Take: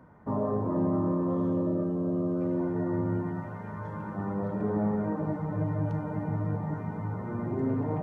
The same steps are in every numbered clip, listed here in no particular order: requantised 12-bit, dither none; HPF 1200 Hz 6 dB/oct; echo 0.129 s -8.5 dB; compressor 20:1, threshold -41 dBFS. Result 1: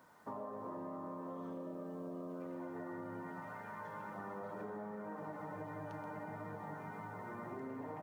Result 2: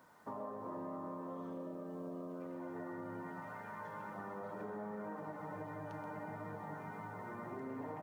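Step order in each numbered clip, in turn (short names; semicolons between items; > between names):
HPF > requantised > echo > compressor; HPF > requantised > compressor > echo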